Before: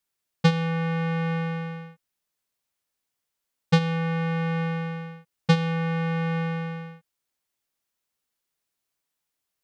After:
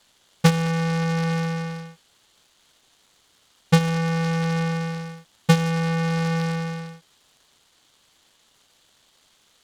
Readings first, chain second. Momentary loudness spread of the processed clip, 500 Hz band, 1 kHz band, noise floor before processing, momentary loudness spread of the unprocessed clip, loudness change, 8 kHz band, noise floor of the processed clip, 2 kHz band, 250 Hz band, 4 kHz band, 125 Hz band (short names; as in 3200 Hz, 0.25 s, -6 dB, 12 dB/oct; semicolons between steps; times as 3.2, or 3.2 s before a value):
14 LU, +3.0 dB, +3.0 dB, -83 dBFS, 13 LU, +3.0 dB, n/a, -62 dBFS, +2.5 dB, +3.0 dB, +4.0 dB, +3.0 dB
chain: band noise 2900–4800 Hz -64 dBFS; noise-modulated delay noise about 2700 Hz, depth 0.041 ms; gain +3 dB